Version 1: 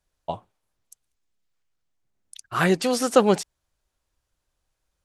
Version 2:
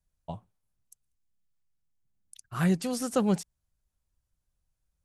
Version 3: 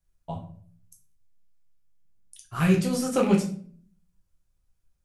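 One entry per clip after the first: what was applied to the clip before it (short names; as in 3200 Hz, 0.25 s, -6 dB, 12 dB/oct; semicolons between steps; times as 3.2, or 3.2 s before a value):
EQ curve 180 Hz 0 dB, 350 Hz -11 dB, 3700 Hz -12 dB, 10000 Hz -5 dB
rattling part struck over -28 dBFS, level -28 dBFS; reverb RT60 0.50 s, pre-delay 6 ms, DRR -1.5 dB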